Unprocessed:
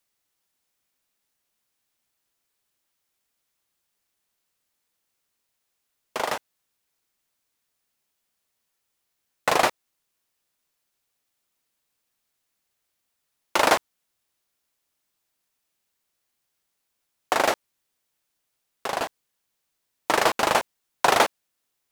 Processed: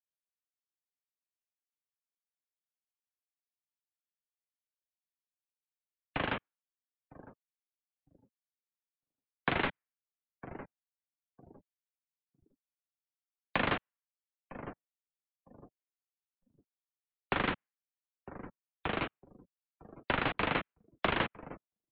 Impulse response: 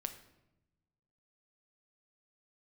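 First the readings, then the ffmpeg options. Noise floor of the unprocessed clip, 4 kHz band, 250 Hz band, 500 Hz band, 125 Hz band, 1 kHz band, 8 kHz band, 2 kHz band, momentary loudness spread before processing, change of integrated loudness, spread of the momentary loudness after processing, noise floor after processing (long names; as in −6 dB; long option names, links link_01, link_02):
−78 dBFS, −11.0 dB, −3.0 dB, −12.0 dB, +3.5 dB, −13.0 dB, below −40 dB, −8.0 dB, 13 LU, −11.0 dB, 19 LU, below −85 dBFS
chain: -filter_complex "[0:a]asubboost=boost=11:cutoff=230,asplit=2[link_01][link_02];[link_02]adelay=955,lowpass=frequency=1200:poles=1,volume=-18.5dB,asplit=2[link_03][link_04];[link_04]adelay=955,lowpass=frequency=1200:poles=1,volume=0.36,asplit=2[link_05][link_06];[link_06]adelay=955,lowpass=frequency=1200:poles=1,volume=0.36[link_07];[link_03][link_05][link_07]amix=inputs=3:normalize=0[link_08];[link_01][link_08]amix=inputs=2:normalize=0,highpass=frequency=530:width_type=q:width=0.5412,highpass=frequency=530:width_type=q:width=1.307,lowpass=frequency=3600:width_type=q:width=0.5176,lowpass=frequency=3600:width_type=q:width=0.7071,lowpass=frequency=3600:width_type=q:width=1.932,afreqshift=-350,acrossover=split=230|1100|2400[link_09][link_10][link_11][link_12];[link_09]acompressor=threshold=-39dB:ratio=4[link_13];[link_10]acompressor=threshold=-35dB:ratio=4[link_14];[link_11]acompressor=threshold=-34dB:ratio=4[link_15];[link_12]acompressor=threshold=-40dB:ratio=4[link_16];[link_13][link_14][link_15][link_16]amix=inputs=4:normalize=0,afftdn=noise_reduction=27:noise_floor=-53"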